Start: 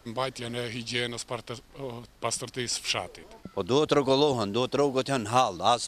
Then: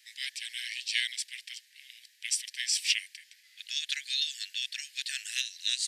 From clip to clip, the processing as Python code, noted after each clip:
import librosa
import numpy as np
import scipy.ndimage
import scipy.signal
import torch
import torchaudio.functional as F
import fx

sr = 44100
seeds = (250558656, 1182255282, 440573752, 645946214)

y = scipy.signal.sosfilt(scipy.signal.butter(16, 1700.0, 'highpass', fs=sr, output='sos'), x)
y = F.gain(torch.from_numpy(y), 2.0).numpy()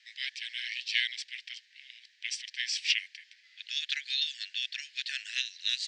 y = scipy.signal.sosfilt(scipy.signal.bessel(6, 3900.0, 'lowpass', norm='mag', fs=sr, output='sos'), x)
y = F.gain(torch.from_numpy(y), 2.5).numpy()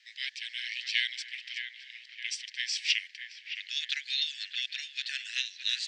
y = fx.echo_wet_lowpass(x, sr, ms=616, feedback_pct=45, hz=2400.0, wet_db=-6.0)